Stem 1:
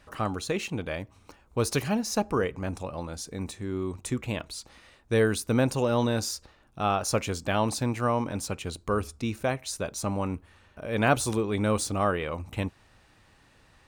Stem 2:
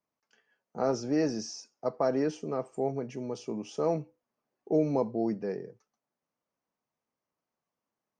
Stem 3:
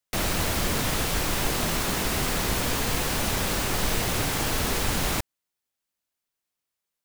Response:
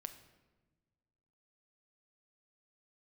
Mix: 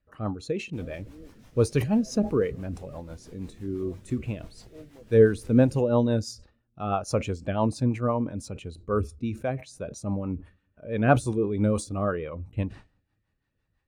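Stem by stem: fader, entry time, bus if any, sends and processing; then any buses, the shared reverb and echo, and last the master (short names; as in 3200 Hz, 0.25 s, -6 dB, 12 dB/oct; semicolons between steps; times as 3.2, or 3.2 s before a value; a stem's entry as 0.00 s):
+2.0 dB, 0.00 s, send -11.5 dB, sustainer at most 100 dB/s
-13.5 dB, 0.00 s, no send, dry
-14.5 dB, 0.60 s, no send, dry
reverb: on, pre-delay 6 ms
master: rotary speaker horn 6 Hz; spectral expander 1.5:1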